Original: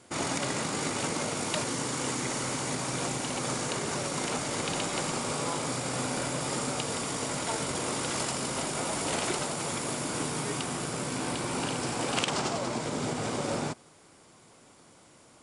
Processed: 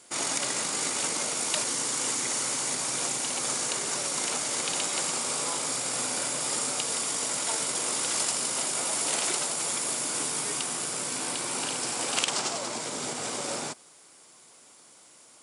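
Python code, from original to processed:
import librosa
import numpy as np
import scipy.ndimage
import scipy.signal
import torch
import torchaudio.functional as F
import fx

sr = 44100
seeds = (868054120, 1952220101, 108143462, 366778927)

y = fx.highpass(x, sr, hz=400.0, slope=6)
y = fx.high_shelf(y, sr, hz=4100.0, db=11.0)
y = y * 10.0 ** (-1.5 / 20.0)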